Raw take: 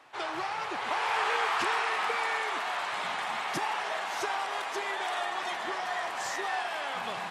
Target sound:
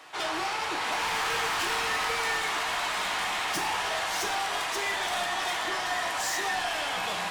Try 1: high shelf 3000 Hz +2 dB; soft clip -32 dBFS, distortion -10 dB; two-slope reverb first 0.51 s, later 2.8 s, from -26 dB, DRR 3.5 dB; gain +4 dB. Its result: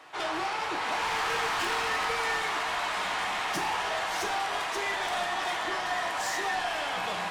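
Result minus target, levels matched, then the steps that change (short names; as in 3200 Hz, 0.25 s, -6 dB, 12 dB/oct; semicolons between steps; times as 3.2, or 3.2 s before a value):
8000 Hz band -3.5 dB
change: high shelf 3000 Hz +9.5 dB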